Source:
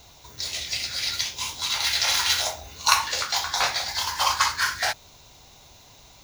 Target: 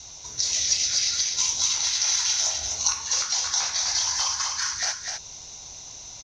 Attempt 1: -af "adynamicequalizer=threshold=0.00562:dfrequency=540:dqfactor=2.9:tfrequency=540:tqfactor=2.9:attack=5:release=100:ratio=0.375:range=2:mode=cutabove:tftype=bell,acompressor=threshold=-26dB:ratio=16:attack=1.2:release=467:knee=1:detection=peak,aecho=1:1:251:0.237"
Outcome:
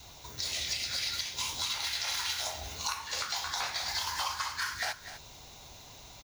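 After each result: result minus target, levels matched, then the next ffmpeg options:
8,000 Hz band −6.0 dB; echo-to-direct −7.5 dB
-af "adynamicequalizer=threshold=0.00562:dfrequency=540:dqfactor=2.9:tfrequency=540:tqfactor=2.9:attack=5:release=100:ratio=0.375:range=2:mode=cutabove:tftype=bell,acompressor=threshold=-26dB:ratio=16:attack=1.2:release=467:knee=1:detection=peak,lowpass=frequency=6000:width_type=q:width=8.5,aecho=1:1:251:0.237"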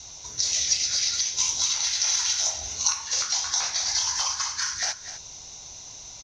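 echo-to-direct −7.5 dB
-af "adynamicequalizer=threshold=0.00562:dfrequency=540:dqfactor=2.9:tfrequency=540:tqfactor=2.9:attack=5:release=100:ratio=0.375:range=2:mode=cutabove:tftype=bell,acompressor=threshold=-26dB:ratio=16:attack=1.2:release=467:knee=1:detection=peak,lowpass=frequency=6000:width_type=q:width=8.5,aecho=1:1:251:0.562"

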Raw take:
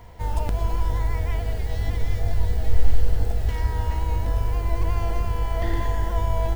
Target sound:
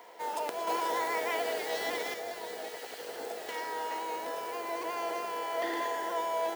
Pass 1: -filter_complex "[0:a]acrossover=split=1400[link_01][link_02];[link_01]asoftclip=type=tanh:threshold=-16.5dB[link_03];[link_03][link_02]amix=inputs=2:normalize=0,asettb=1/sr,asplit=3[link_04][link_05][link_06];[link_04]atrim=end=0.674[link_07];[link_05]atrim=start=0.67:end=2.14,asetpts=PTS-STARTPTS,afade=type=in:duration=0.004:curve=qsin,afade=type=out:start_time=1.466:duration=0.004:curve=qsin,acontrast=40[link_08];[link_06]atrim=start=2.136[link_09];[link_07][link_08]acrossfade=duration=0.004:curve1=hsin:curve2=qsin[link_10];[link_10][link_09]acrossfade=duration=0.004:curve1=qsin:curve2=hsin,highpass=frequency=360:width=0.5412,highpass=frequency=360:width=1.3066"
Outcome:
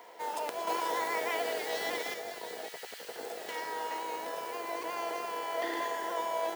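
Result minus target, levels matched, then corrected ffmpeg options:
soft clipping: distortion +9 dB
-filter_complex "[0:a]acrossover=split=1400[link_01][link_02];[link_01]asoftclip=type=tanh:threshold=-8.5dB[link_03];[link_03][link_02]amix=inputs=2:normalize=0,asettb=1/sr,asplit=3[link_04][link_05][link_06];[link_04]atrim=end=0.674[link_07];[link_05]atrim=start=0.67:end=2.14,asetpts=PTS-STARTPTS,afade=type=in:duration=0.004:curve=qsin,afade=type=out:start_time=1.466:duration=0.004:curve=qsin,acontrast=40[link_08];[link_06]atrim=start=2.136[link_09];[link_07][link_08]acrossfade=duration=0.004:curve1=hsin:curve2=qsin[link_10];[link_10][link_09]acrossfade=duration=0.004:curve1=qsin:curve2=hsin,highpass=frequency=360:width=0.5412,highpass=frequency=360:width=1.3066"

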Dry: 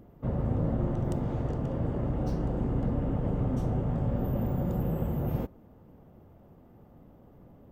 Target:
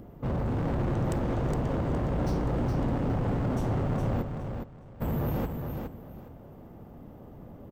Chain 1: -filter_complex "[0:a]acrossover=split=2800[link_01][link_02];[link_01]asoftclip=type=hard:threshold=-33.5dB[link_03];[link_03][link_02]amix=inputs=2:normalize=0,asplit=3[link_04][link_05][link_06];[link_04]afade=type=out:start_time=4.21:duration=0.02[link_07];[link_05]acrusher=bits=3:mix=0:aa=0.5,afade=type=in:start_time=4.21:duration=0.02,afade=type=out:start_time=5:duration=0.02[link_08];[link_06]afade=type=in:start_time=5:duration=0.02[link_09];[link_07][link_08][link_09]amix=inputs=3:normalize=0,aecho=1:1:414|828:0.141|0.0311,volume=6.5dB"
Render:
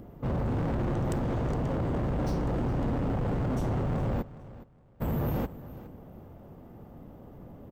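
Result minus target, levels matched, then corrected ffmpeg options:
echo-to-direct −11 dB
-filter_complex "[0:a]acrossover=split=2800[link_01][link_02];[link_01]asoftclip=type=hard:threshold=-33.5dB[link_03];[link_03][link_02]amix=inputs=2:normalize=0,asplit=3[link_04][link_05][link_06];[link_04]afade=type=out:start_time=4.21:duration=0.02[link_07];[link_05]acrusher=bits=3:mix=0:aa=0.5,afade=type=in:start_time=4.21:duration=0.02,afade=type=out:start_time=5:duration=0.02[link_08];[link_06]afade=type=in:start_time=5:duration=0.02[link_09];[link_07][link_08][link_09]amix=inputs=3:normalize=0,aecho=1:1:414|828|1242:0.501|0.11|0.0243,volume=6.5dB"

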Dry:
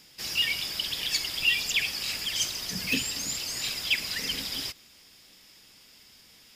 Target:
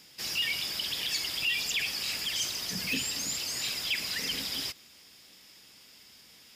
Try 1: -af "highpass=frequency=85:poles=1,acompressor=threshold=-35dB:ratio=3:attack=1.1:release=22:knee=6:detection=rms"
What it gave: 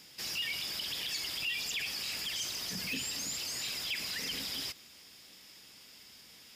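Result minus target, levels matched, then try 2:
downward compressor: peak gain reduction +6 dB
-af "highpass=frequency=85:poles=1,acompressor=threshold=-26dB:ratio=3:attack=1.1:release=22:knee=6:detection=rms"

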